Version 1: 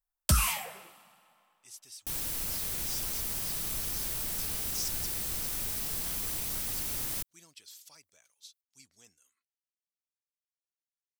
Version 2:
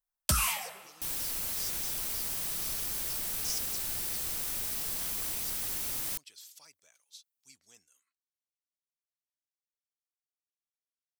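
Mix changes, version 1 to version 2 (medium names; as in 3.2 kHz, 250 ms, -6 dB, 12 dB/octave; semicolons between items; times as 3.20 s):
speech: entry -1.30 s; second sound: entry -1.05 s; master: add bass shelf 270 Hz -6.5 dB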